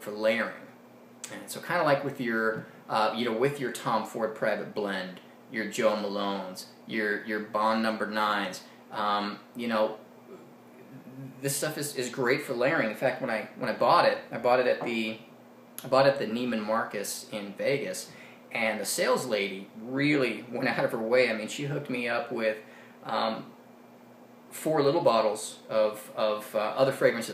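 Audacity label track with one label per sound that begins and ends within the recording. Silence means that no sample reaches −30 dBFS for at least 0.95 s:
11.440000	23.400000	sound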